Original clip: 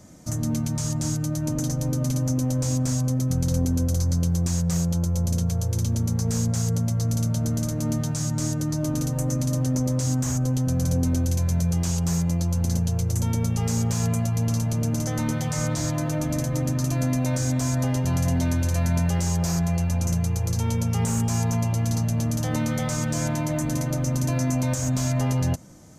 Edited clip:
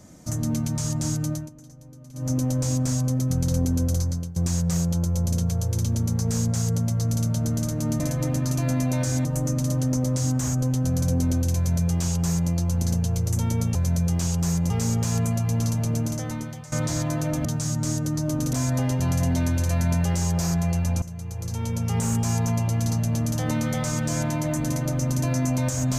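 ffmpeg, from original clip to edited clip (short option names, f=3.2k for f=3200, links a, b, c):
-filter_complex "[0:a]asplit=12[a][b][c][d][e][f][g][h][i][j][k][l];[a]atrim=end=1.5,asetpts=PTS-STARTPTS,afade=t=out:st=1.31:d=0.19:silence=0.0891251[m];[b]atrim=start=1.5:end=2.13,asetpts=PTS-STARTPTS,volume=-21dB[n];[c]atrim=start=2.13:end=4.36,asetpts=PTS-STARTPTS,afade=t=in:d=0.19:silence=0.0891251,afade=t=out:st=1.84:d=0.39:silence=0.1[o];[d]atrim=start=4.36:end=8.002,asetpts=PTS-STARTPTS,afade=t=in:d=0.004:c=hsin:silence=0.1[p];[e]atrim=start=16.328:end=17.582[q];[f]atrim=start=9.078:end=13.582[r];[g]atrim=start=11.388:end=12.342[s];[h]atrim=start=13.578:end=15.6,asetpts=PTS-STARTPTS,afade=t=out:st=1.242:d=0.78:silence=0.112202[t];[i]atrim=start=15.6:end=16.332,asetpts=PTS-STARTPTS,afade=t=in:d=0.004:c=hsin:silence=0.112202[u];[j]atrim=start=7.998:end=9.082[v];[k]atrim=start=17.578:end=20.07,asetpts=PTS-STARTPTS,afade=t=out:st=2.488:d=0.004:c=hsin:silence=0.158489[w];[l]atrim=start=20.07,asetpts=PTS-STARTPTS,afade=t=in:d=1.05:silence=0.158489[x];[m][n][o][p]concat=n=4:v=0:a=1[y];[y][q]acrossfade=d=0.004:c1=hsin:c2=hsin[z];[z][r]acrossfade=d=0.004:c1=hsin:c2=hsin[aa];[aa][s]acrossfade=d=0.004:c1=hsin:c2=hsin[ab];[t][u]concat=n=2:v=0:a=1[ac];[ab][ac]acrossfade=d=0.004:c1=hsin:c2=hsin[ad];[ad][v]acrossfade=d=0.004:c1=hsin:c2=hsin[ae];[w][x]concat=n=2:v=0:a=1[af];[ae][af]acrossfade=d=0.004:c1=hsin:c2=hsin"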